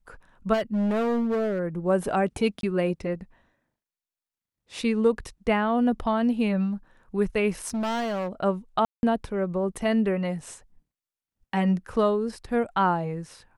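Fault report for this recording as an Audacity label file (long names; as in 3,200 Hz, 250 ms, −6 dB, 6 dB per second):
0.530000	1.600000	clipping −22 dBFS
2.610000	2.630000	drop-out 22 ms
7.620000	8.290000	clipping −25 dBFS
8.850000	9.030000	drop-out 181 ms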